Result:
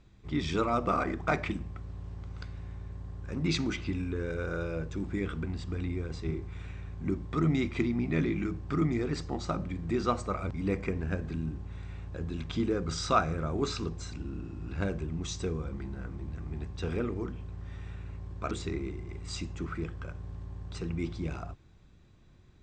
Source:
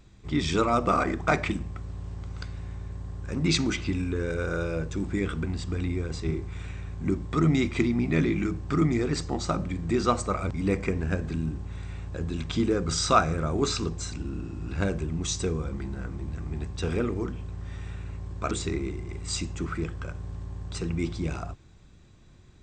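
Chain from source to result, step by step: distance through air 76 m; trim -4.5 dB

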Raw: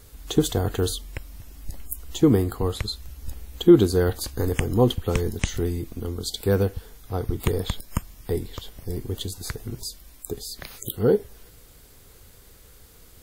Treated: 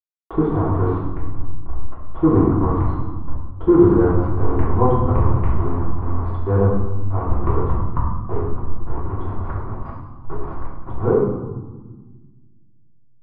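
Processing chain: send-on-delta sampling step -26.5 dBFS; four-pole ladder low-pass 1.2 kHz, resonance 65%; bass shelf 120 Hz +4 dB; reverberation RT60 1.4 s, pre-delay 3 ms, DRR -7 dB; trim +5 dB

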